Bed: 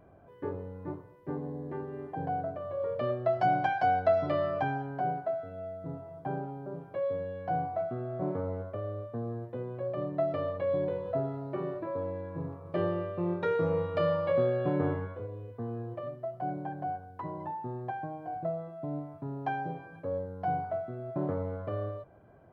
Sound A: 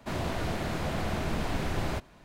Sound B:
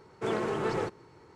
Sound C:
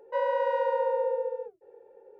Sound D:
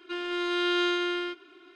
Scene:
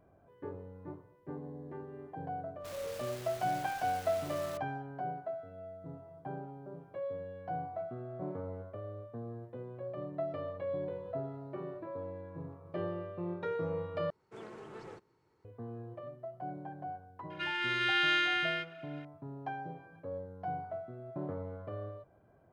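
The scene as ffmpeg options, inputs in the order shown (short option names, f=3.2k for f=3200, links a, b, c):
-filter_complex "[0:a]volume=-7dB[a];[1:a]aeval=exprs='(mod(39.8*val(0)+1,2)-1)/39.8':c=same[b];[4:a]firequalizer=gain_entry='entry(180,0);entry(630,-22);entry(1600,12);entry(3800,0)':delay=0.05:min_phase=1[c];[a]asplit=2[d][e];[d]atrim=end=14.104[f];[2:a]atrim=end=1.35,asetpts=PTS-STARTPTS,volume=-17.5dB[g];[e]atrim=start=15.446[h];[b]atrim=end=2.24,asetpts=PTS-STARTPTS,volume=-13.5dB,afade=t=in:d=0.05,afade=t=out:st=2.19:d=0.05,adelay=2580[i];[c]atrim=end=1.75,asetpts=PTS-STARTPTS,volume=-5dB,afade=t=in:d=0.004:c=hsin,afade=t=out:st=1.746:d=0.004:c=hsin,adelay=17300[j];[f][g]acrossfade=d=0.004:c1=hsin:c2=hsin[k];[k][h]acrossfade=d=0.004:c1=hsin:c2=hsin[l];[l][i][j]amix=inputs=3:normalize=0"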